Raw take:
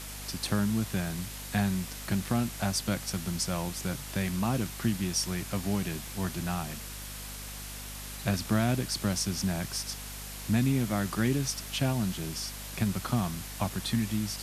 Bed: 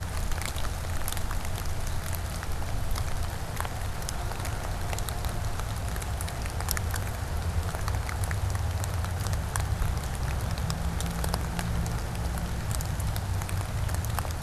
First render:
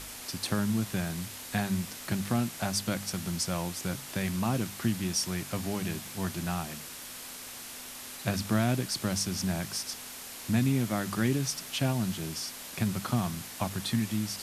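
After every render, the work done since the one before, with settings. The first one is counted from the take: de-hum 50 Hz, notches 4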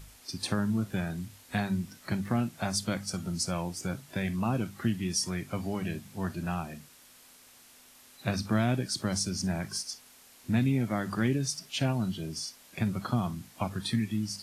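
noise print and reduce 13 dB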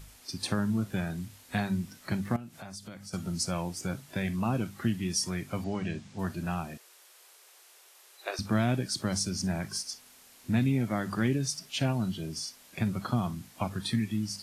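2.36–3.13 compressor 3:1, threshold -44 dBFS; 5.64–6.19 LPF 7400 Hz 24 dB/oct; 6.77–8.39 elliptic high-pass 360 Hz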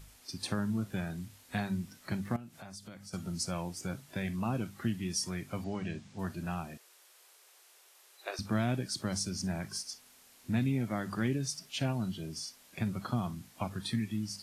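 gain -4 dB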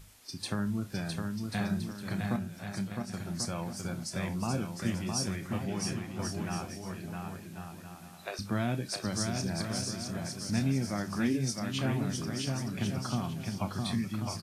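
doubler 30 ms -11.5 dB; bouncing-ball echo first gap 0.66 s, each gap 0.65×, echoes 5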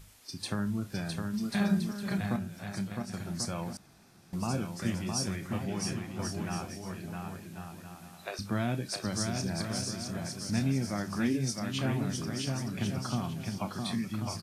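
1.33–2.18 comb 5 ms, depth 86%; 3.77–4.33 room tone; 13.59–14.1 HPF 140 Hz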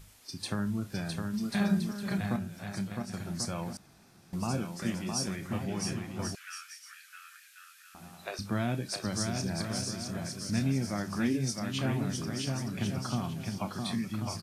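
4.62–5.39 bell 100 Hz -12 dB 0.31 oct; 6.35–7.95 steep high-pass 1300 Hz 72 dB/oct; 10.24–10.65 bell 820 Hz -8 dB 0.28 oct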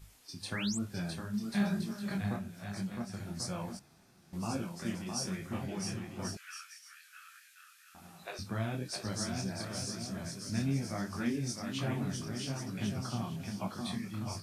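0.52–0.77 painted sound rise 1400–8800 Hz -36 dBFS; detuned doubles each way 38 cents

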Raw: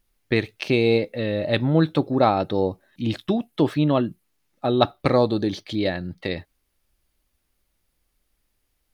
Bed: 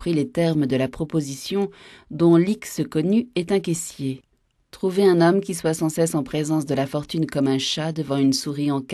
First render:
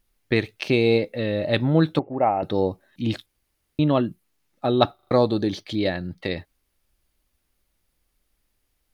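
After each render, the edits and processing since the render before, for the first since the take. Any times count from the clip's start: 1.99–2.43 rippled Chebyshev low-pass 2900 Hz, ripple 9 dB; 3.26–3.79 room tone; 4.95 stutter in place 0.04 s, 4 plays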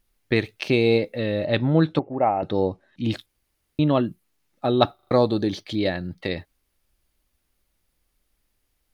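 1.45–3.04 air absorption 68 m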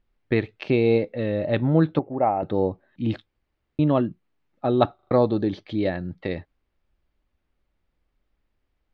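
LPF 3900 Hz 12 dB/oct; high shelf 2700 Hz -10 dB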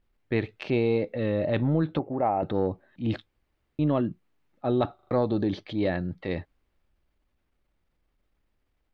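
transient shaper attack -6 dB, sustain +2 dB; compressor, threshold -20 dBFS, peak gain reduction 6 dB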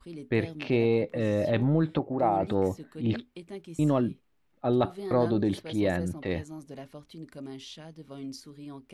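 add bed -20.5 dB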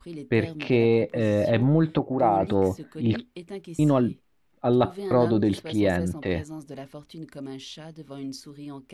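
gain +4 dB

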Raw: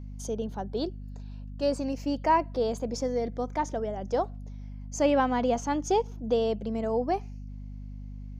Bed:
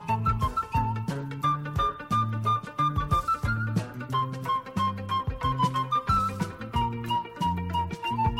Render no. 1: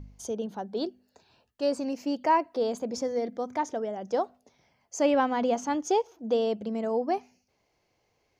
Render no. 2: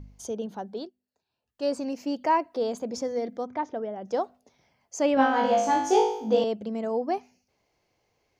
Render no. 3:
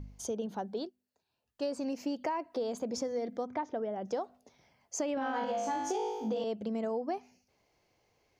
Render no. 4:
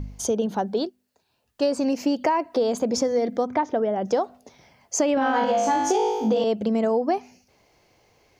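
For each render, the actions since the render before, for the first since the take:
de-hum 50 Hz, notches 5
0.6–1.73 dip -20 dB, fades 0.31 s equal-power; 3.45–4.06 air absorption 230 m; 5.15–6.44 flutter echo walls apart 3.2 m, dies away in 0.66 s
limiter -17 dBFS, peak gain reduction 8.5 dB; compressor, threshold -31 dBFS, peak gain reduction 9.5 dB
gain +12 dB

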